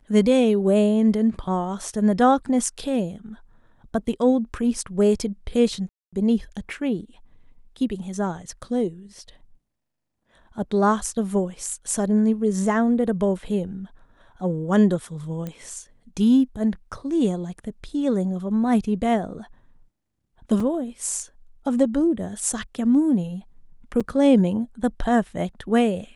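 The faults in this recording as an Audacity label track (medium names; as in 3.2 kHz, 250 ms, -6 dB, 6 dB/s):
5.890000	6.130000	dropout 236 ms
15.470000	15.470000	pop -19 dBFS
20.600000	20.600000	dropout 3.7 ms
24.000000	24.010000	dropout 6.3 ms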